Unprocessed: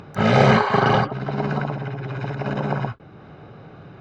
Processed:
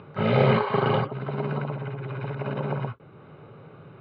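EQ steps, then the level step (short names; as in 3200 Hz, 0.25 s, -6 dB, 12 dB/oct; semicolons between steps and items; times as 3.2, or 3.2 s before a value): dynamic EQ 1300 Hz, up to -4 dB, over -30 dBFS, Q 1; air absorption 240 m; speaker cabinet 130–4100 Hz, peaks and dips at 200 Hz -7 dB, 300 Hz -7 dB, 730 Hz -9 dB, 1700 Hz -7 dB; 0.0 dB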